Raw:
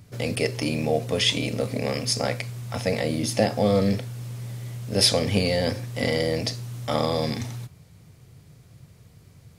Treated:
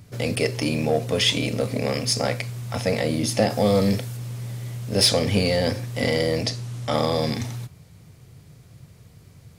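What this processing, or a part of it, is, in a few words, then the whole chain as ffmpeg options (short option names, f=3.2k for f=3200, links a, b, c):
parallel distortion: -filter_complex "[0:a]asplit=2[a][b];[b]asoftclip=type=hard:threshold=-19.5dB,volume=-6.5dB[c];[a][c]amix=inputs=2:normalize=0,asettb=1/sr,asplit=3[d][e][f];[d]atrim=end=3.504[g];[e]atrim=start=3.5:end=4.17,asetpts=PTS-STARTPTS,afade=t=in:d=0.004:c=qsin,afade=t=out:st=0.666:d=0.004:c=qsin,highshelf=f=5.9k:g=7.5[h];[f]atrim=start=4.166[i];[g][h]acrossfade=d=0.004:c1=hsin:c2=qsin[j];[j][i]acrossfade=d=0.004:c1=qsin:c2=hsin,asettb=1/sr,asplit=3[k][l][m];[k]atrim=end=6.434[n];[l]atrim=start=6.43:end=6.94,asetpts=PTS-STARTPTS,afade=t=in:d=0.004:c=qsin,afade=t=out:st=0.506:d=0.004:c=qsin,lowpass=10k[o];[m]atrim=start=6.936[p];[n][o]acrossfade=d=0.004:c1=hsin:c2=qsin[q];[q][p]acrossfade=d=0.004:c1=qsin:c2=hsin,volume=-1dB"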